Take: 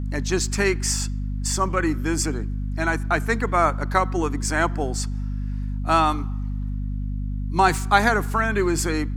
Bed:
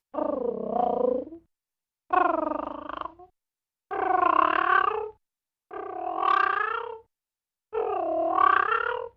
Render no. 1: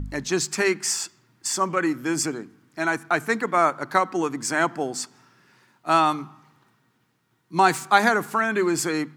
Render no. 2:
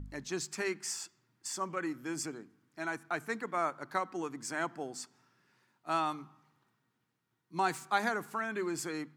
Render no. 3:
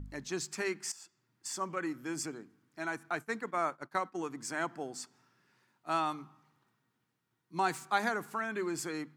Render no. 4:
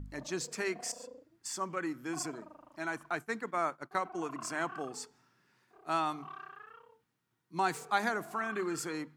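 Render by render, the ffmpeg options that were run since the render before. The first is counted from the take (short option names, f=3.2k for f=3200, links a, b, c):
-af "bandreject=f=50:t=h:w=4,bandreject=f=100:t=h:w=4,bandreject=f=150:t=h:w=4,bandreject=f=200:t=h:w=4,bandreject=f=250:t=h:w=4"
-af "volume=-13dB"
-filter_complex "[0:a]asettb=1/sr,asplit=3[a][b][c];[a]atrim=end=3.154[d];[b]atrim=start=3.15:end=4.29,asetpts=PTS-STARTPTS,afade=t=in:d=0.004:c=qsin,afade=t=out:st=1.136:d=0.004:c=qsin,agate=range=-33dB:threshold=-43dB:ratio=3:release=100:detection=peak[e];[c]atrim=start=4.286[f];[d][e]acrossfade=d=0.004:c1=hsin:c2=qsin[g];[g][f]acrossfade=d=0.004:c1=qsin:c2=hsin,asplit=2[h][i];[h]atrim=end=0.92,asetpts=PTS-STARTPTS,afade=t=out:st=0.916:d=0.004:c=hsin:silence=0.16788[j];[i]atrim=start=0.92,asetpts=PTS-STARTPTS,afade=t=in:d=0.76:c=qsin:silence=0.16788[k];[j][k]concat=n=2:v=0:a=1"
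-filter_complex "[1:a]volume=-25dB[a];[0:a][a]amix=inputs=2:normalize=0"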